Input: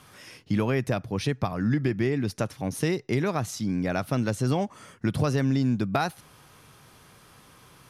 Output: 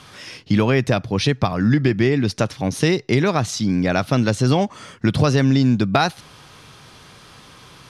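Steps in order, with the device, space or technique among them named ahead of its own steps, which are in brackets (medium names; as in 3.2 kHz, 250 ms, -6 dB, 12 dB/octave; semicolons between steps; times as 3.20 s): low-pass 7.2 kHz 12 dB/octave; presence and air boost (peaking EQ 3.9 kHz +5 dB 1.1 oct; treble shelf 12 kHz +6.5 dB); trim +8 dB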